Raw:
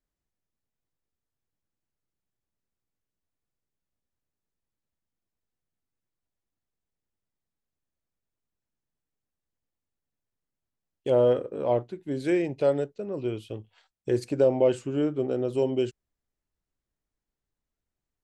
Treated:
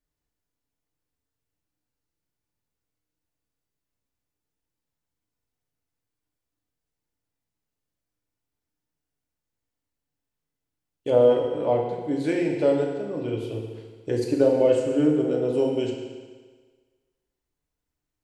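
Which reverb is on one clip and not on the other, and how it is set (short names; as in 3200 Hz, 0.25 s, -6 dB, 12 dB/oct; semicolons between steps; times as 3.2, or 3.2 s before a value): FDN reverb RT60 1.5 s, low-frequency decay 0.9×, high-frequency decay 1×, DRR -0.5 dB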